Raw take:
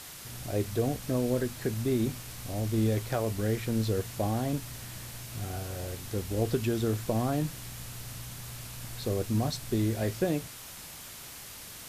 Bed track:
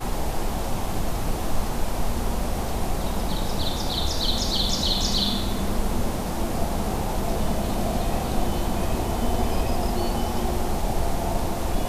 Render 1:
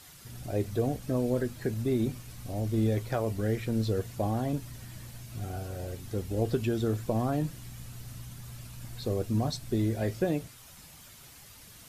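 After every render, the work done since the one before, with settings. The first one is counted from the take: noise reduction 9 dB, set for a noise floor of -45 dBFS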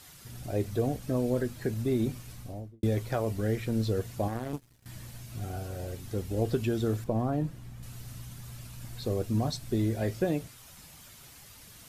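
2.30–2.83 s: studio fade out; 4.28–4.86 s: power-law waveshaper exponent 2; 7.04–7.83 s: treble shelf 2.3 kHz -11.5 dB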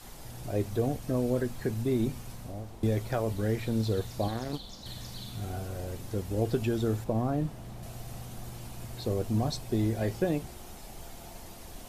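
add bed track -22 dB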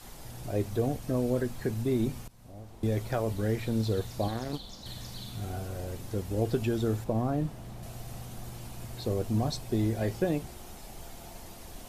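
2.28–3.00 s: fade in, from -19.5 dB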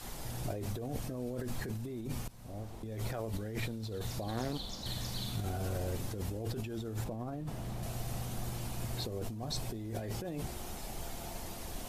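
peak limiter -24.5 dBFS, peak gain reduction 8.5 dB; compressor with a negative ratio -37 dBFS, ratio -1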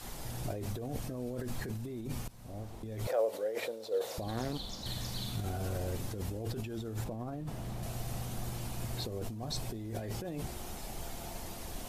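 3.07–4.18 s: resonant high-pass 520 Hz, resonance Q 5.9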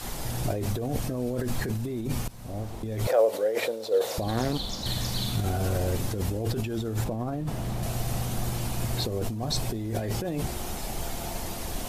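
trim +9 dB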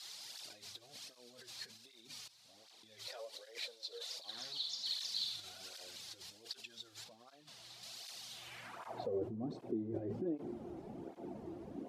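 band-pass sweep 4.3 kHz -> 310 Hz, 8.30–9.31 s; cancelling through-zero flanger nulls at 1.3 Hz, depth 4.8 ms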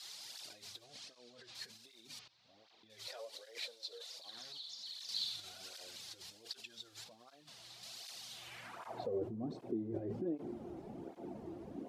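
0.84–1.54 s: low-pass 9 kHz -> 4.2 kHz; 2.19–2.90 s: distance through air 200 m; 3.89–5.09 s: compression 2.5:1, threshold -48 dBFS

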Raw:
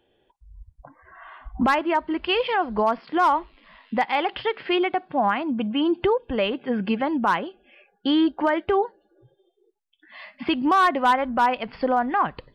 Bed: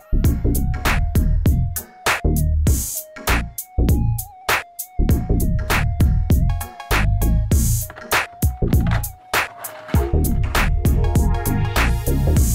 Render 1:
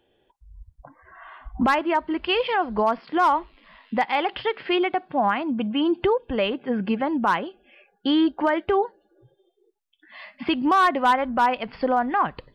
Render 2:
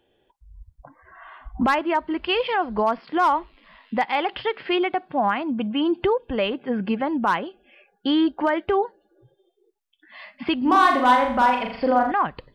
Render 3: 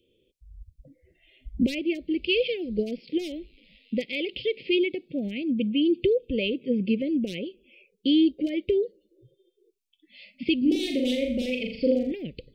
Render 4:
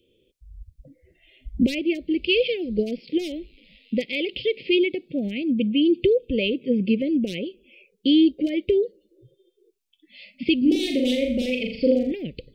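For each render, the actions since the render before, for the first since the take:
6.53–7.20 s: peaking EQ 3.8 kHz -4 dB 1.7 oct
10.58–12.12 s: flutter echo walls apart 6.9 m, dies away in 0.57 s
Chebyshev band-stop 520–2300 Hz, order 4; peaking EQ 1.6 kHz -6 dB 0.3 oct
trim +3.5 dB

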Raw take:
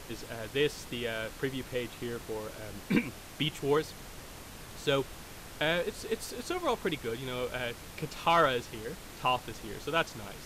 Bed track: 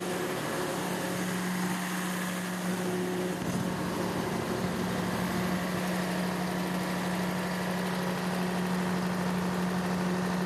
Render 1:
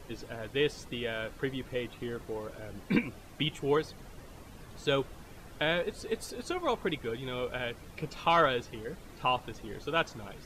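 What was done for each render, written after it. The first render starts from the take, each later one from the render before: noise reduction 10 dB, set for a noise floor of -47 dBFS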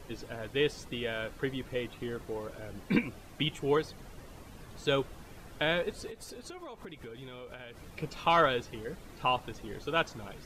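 6.10–7.94 s: compression 12:1, threshold -41 dBFS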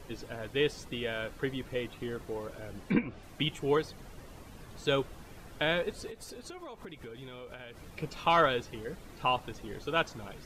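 2.77–3.23 s: low-pass that closes with the level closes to 2 kHz, closed at -25 dBFS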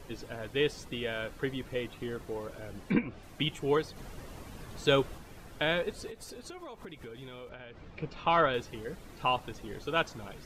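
3.96–5.18 s: gain +3.5 dB; 7.49–8.54 s: distance through air 170 m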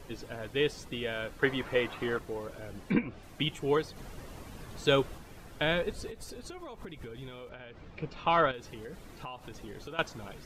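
1.42–2.19 s: peaking EQ 1.2 kHz +12 dB 2.7 oct; 5.61–7.31 s: bass shelf 130 Hz +7.5 dB; 8.51–9.99 s: compression, threshold -39 dBFS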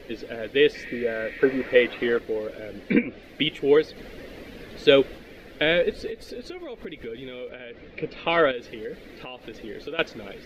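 0.77–1.65 s: spectral replace 1.6–4.2 kHz after; graphic EQ 125/250/500/1000/2000/4000/8000 Hz -5/+7/+11/-8/+11/+7/-9 dB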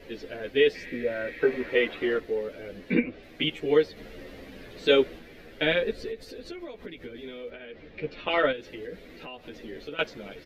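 endless flanger 10.9 ms -0.5 Hz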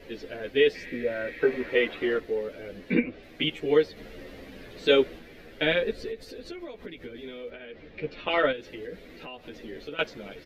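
no audible change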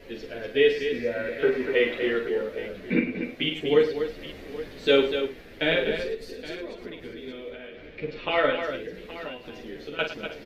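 multi-tap echo 43/107/244/305/821 ms -6.5/-11.5/-8/-18/-14.5 dB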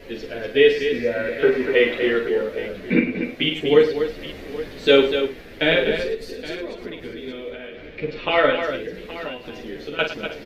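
trim +5.5 dB

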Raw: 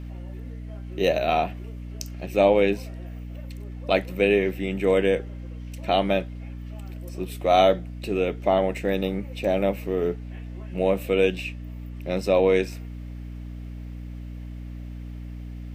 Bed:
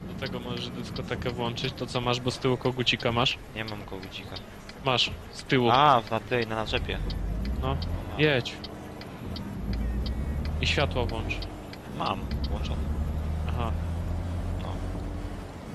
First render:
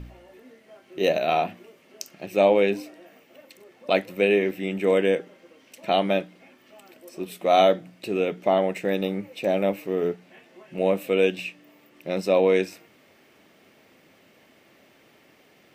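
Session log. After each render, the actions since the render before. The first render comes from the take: de-hum 60 Hz, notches 5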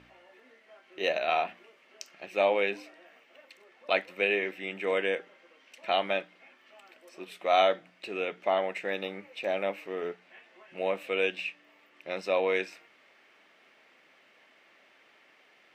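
band-pass filter 1.8 kHz, Q 0.72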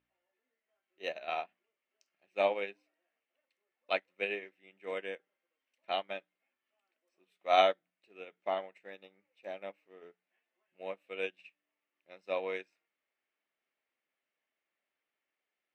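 upward expansion 2.5:1, over -39 dBFS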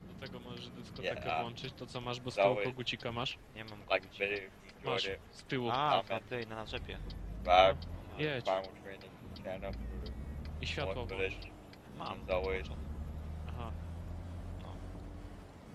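add bed -13 dB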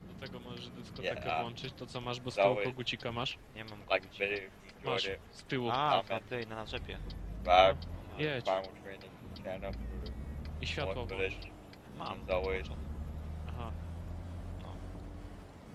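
trim +1 dB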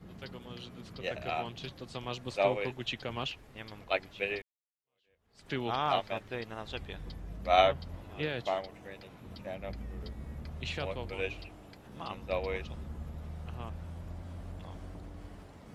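4.42–5.47 s: fade in exponential

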